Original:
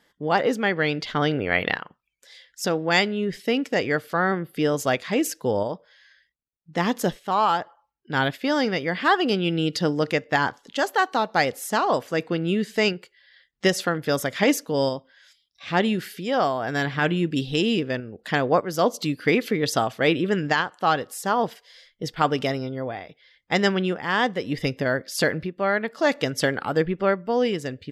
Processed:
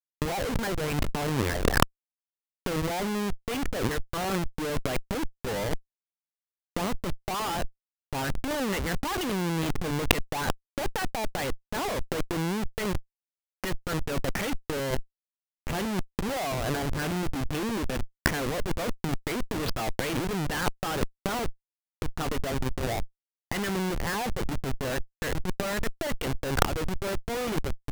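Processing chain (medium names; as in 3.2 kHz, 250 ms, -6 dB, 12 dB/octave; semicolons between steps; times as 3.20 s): LFO low-pass sine 2.3 Hz 790–3200 Hz; Schmitt trigger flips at -26 dBFS; compressor with a negative ratio -29 dBFS, ratio -0.5; trim +4 dB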